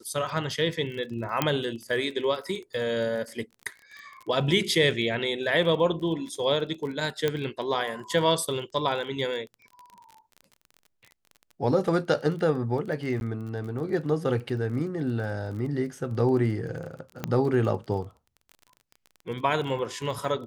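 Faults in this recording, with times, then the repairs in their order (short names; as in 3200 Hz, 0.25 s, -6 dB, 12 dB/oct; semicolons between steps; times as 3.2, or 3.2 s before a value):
crackle 27/s -36 dBFS
1.42 pop -8 dBFS
7.28 pop -12 dBFS
13.2–13.21 gap 11 ms
17.24 pop -14 dBFS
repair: de-click; interpolate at 13.2, 11 ms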